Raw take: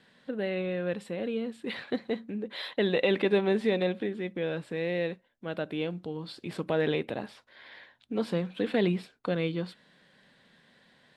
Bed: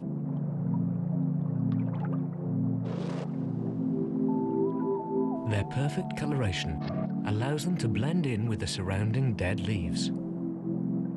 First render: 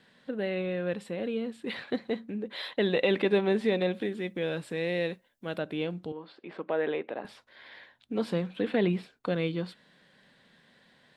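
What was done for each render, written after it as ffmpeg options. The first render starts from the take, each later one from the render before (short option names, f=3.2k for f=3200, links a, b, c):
-filter_complex "[0:a]asettb=1/sr,asplit=3[a][b][c];[a]atrim=end=3.934[d];[b]atrim=start=3.93:end=5.58,asetpts=PTS-STARTPTS,afade=t=in:d=0.004:c=qsin,afade=t=out:st=1.646:d=0.004:c=qsin,highshelf=f=5.1k:g=11[e];[c]atrim=start=5.576[f];[d][e]acrossfade=d=0.004:c1=hsin:c2=qsin[g];[g][f]acrossfade=d=0.004:c1=qsin:c2=hsin,asettb=1/sr,asplit=3[h][i][j];[h]atrim=end=6.124[k];[i]atrim=start=6.12:end=7.25,asetpts=PTS-STARTPTS,afade=t=in:d=0.004:c=qsin,afade=t=out:st=1.126:d=0.004:c=qsin,highpass=360,lowpass=2.1k[l];[j]atrim=start=7.246[m];[k][l]acrossfade=d=0.004:c1=hsin:c2=qsin[n];[n][m]acrossfade=d=0.004:c1=qsin:c2=hsin,asettb=1/sr,asplit=3[o][p][q];[o]atrim=end=8.484[r];[p]atrim=start=8.48:end=9.12,asetpts=PTS-STARTPTS,afade=t=in:d=0.004:c=qsin,afade=t=out:st=0.636:d=0.004:c=qsin,acrossover=split=3700[s][t];[t]acompressor=threshold=-56dB:ratio=4:attack=1:release=60[u];[s][u]amix=inputs=2:normalize=0[v];[q]atrim=start=9.116[w];[r][v]acrossfade=d=0.004:c1=hsin:c2=qsin[x];[x][w]acrossfade=d=0.004:c1=qsin:c2=hsin"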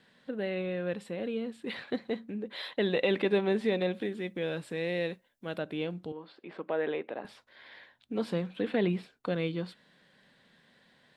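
-af "volume=-2dB"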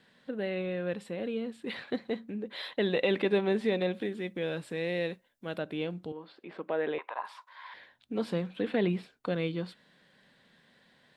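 -filter_complex "[0:a]asettb=1/sr,asplit=3[a][b][c];[a]atrim=end=6.984[d];[b]atrim=start=6.98:end=7.74,asetpts=PTS-STARTPTS,afade=t=in:d=0.004:c=qsin,afade=t=out:st=0.756:d=0.004:c=qsin,highpass=f=1k:t=q:w=9.7[e];[c]atrim=start=7.736[f];[d][e]acrossfade=d=0.004:c1=hsin:c2=qsin[g];[g][f]acrossfade=d=0.004:c1=qsin:c2=hsin"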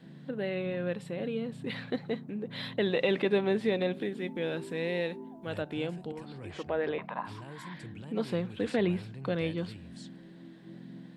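-filter_complex "[1:a]volume=-16dB[a];[0:a][a]amix=inputs=2:normalize=0"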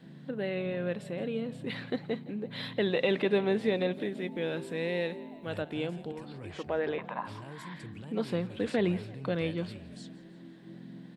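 -filter_complex "[0:a]asplit=5[a][b][c][d][e];[b]adelay=168,afreqshift=41,volume=-20dB[f];[c]adelay=336,afreqshift=82,volume=-25.2dB[g];[d]adelay=504,afreqshift=123,volume=-30.4dB[h];[e]adelay=672,afreqshift=164,volume=-35.6dB[i];[a][f][g][h][i]amix=inputs=5:normalize=0"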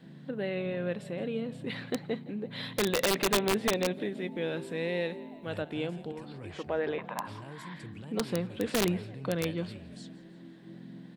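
-af "aeval=exprs='(mod(9.44*val(0)+1,2)-1)/9.44':c=same"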